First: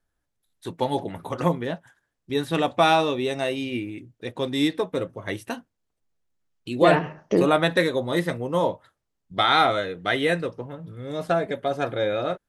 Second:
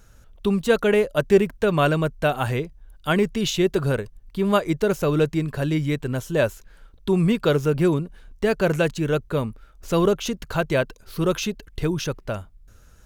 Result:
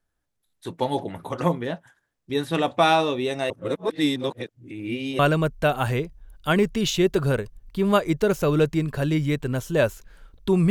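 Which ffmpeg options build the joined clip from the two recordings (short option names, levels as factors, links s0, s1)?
-filter_complex "[0:a]apad=whole_dur=10.7,atrim=end=10.7,asplit=2[s0][s1];[s0]atrim=end=3.502[s2];[s1]atrim=start=3.498:end=5.192,asetpts=PTS-STARTPTS,areverse[s3];[1:a]atrim=start=1.788:end=7.3[s4];[s2][s3]acrossfade=d=0.004:c1=hsin:c2=hsin[s5];[s5][s4]acrossfade=d=0.004:c1=hsin:c2=hsin"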